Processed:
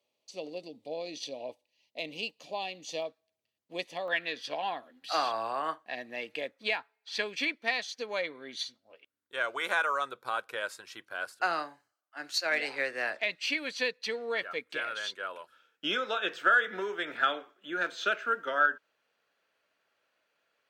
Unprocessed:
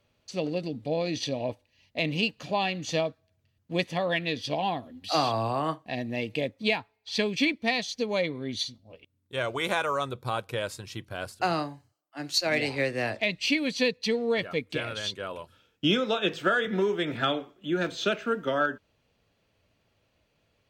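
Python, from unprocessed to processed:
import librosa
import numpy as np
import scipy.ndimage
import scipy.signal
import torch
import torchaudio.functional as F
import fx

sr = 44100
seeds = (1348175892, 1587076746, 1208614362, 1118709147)

y = scipy.signal.sosfilt(scipy.signal.butter(2, 440.0, 'highpass', fs=sr, output='sos'), x)
y = fx.peak_eq(y, sr, hz=1500.0, db=fx.steps((0.0, -15.0), (3.02, -6.5), (4.08, 10.0)), octaves=0.71)
y = y * 10.0 ** (-5.5 / 20.0)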